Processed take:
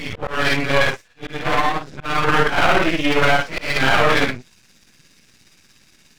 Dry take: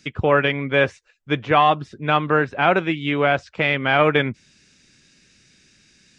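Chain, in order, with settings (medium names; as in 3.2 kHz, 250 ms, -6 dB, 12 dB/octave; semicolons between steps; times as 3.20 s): phase randomisation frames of 200 ms; tremolo 17 Hz, depth 37%; dynamic bell 1.3 kHz, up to +6 dB, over -32 dBFS, Q 0.7; 1.47–2.02 s: compression 2.5:1, threshold -23 dBFS, peak gain reduction 10 dB; peak limiter -10 dBFS, peak gain reduction 8 dB; half-wave rectifier; slow attack 233 ms; trim +8 dB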